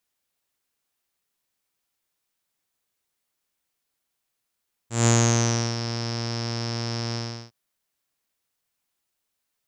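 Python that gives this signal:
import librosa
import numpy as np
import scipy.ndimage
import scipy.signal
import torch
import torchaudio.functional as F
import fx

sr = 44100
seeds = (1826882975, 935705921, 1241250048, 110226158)

y = fx.sub_voice(sr, note=46, wave='saw', cutoff_hz=5300.0, q=12.0, env_oct=0.5, env_s=0.9, attack_ms=164.0, decay_s=0.69, sustain_db=-11.5, release_s=0.36, note_s=2.25, slope=12)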